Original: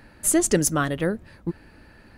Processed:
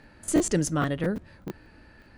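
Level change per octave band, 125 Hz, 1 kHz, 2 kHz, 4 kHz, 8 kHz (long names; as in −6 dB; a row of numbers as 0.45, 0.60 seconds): −1.5, −4.0, −5.5, −5.0, −9.0 decibels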